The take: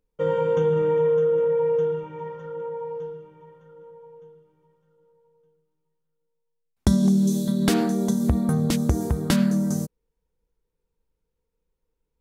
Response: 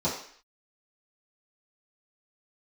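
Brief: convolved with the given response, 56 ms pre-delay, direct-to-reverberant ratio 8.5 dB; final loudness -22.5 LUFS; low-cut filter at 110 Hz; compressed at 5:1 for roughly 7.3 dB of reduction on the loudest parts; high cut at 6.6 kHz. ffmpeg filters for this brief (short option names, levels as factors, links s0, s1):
-filter_complex "[0:a]highpass=110,lowpass=6600,acompressor=threshold=0.0631:ratio=5,asplit=2[s0][s1];[1:a]atrim=start_sample=2205,adelay=56[s2];[s1][s2]afir=irnorm=-1:irlink=0,volume=0.119[s3];[s0][s3]amix=inputs=2:normalize=0,volume=1.58"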